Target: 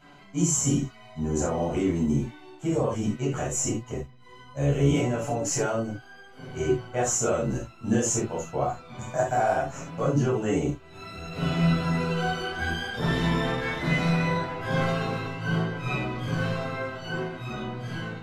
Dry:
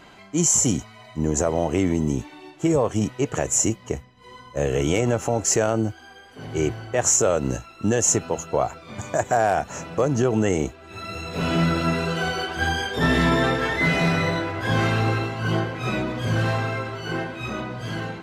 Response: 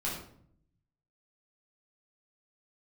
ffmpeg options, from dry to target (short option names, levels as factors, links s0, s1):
-filter_complex "[1:a]atrim=start_sample=2205,atrim=end_sample=3969[s0];[0:a][s0]afir=irnorm=-1:irlink=0,flanger=delay=7:depth=1.7:regen=38:speed=0.19:shape=sinusoidal,volume=0.562"